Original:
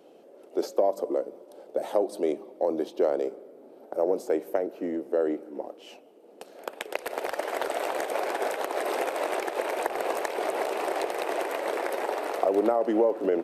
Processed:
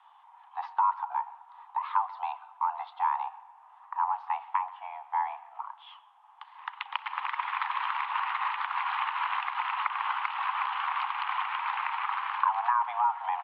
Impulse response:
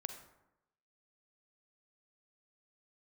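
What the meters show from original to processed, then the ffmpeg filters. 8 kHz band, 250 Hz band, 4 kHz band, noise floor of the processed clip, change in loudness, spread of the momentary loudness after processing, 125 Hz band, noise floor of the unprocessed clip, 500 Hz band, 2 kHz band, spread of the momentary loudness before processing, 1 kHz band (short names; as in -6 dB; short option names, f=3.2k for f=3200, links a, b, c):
under -35 dB, under -40 dB, 0.0 dB, -57 dBFS, -2.0 dB, 13 LU, n/a, -52 dBFS, -29.5 dB, +2.0 dB, 11 LU, +5.5 dB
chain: -filter_complex "[0:a]asplit=2[a][b];[b]adelay=130,highpass=300,lowpass=3.4k,asoftclip=type=hard:threshold=-17dB,volume=-20dB[c];[a][c]amix=inputs=2:normalize=0,highpass=f=520:t=q:w=0.5412,highpass=f=520:t=q:w=1.307,lowpass=f=3.1k:t=q:w=0.5176,lowpass=f=3.1k:t=q:w=0.7071,lowpass=f=3.1k:t=q:w=1.932,afreqshift=380" -ar 22050 -c:a nellymoser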